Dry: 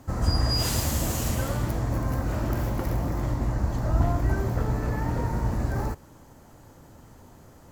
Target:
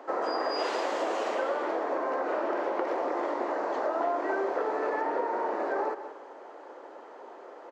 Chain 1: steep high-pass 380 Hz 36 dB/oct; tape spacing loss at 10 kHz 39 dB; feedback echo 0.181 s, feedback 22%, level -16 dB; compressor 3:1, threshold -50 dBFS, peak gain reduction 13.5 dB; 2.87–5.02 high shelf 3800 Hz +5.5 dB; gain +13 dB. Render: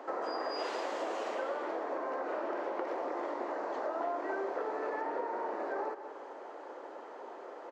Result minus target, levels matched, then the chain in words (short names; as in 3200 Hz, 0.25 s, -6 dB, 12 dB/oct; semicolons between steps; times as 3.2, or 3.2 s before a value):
compressor: peak gain reduction +6.5 dB
steep high-pass 380 Hz 36 dB/oct; tape spacing loss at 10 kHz 39 dB; feedback echo 0.181 s, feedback 22%, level -16 dB; compressor 3:1, threshold -40.5 dBFS, peak gain reduction 7 dB; 2.87–5.02 high shelf 3800 Hz +5.5 dB; gain +13 dB